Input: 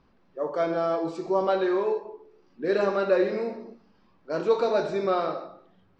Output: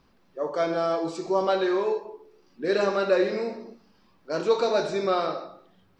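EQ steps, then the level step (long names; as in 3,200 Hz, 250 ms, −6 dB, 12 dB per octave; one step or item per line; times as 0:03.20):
high-shelf EQ 3,900 Hz +12 dB
0.0 dB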